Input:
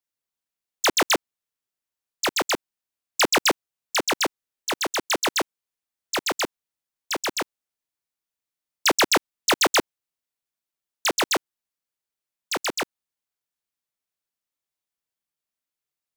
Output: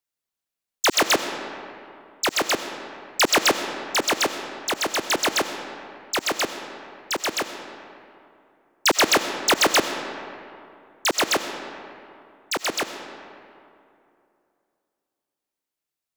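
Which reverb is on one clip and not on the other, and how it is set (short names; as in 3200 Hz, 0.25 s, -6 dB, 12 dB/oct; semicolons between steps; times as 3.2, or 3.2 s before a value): digital reverb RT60 2.7 s, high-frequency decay 0.55×, pre-delay 55 ms, DRR 8 dB; gain +1 dB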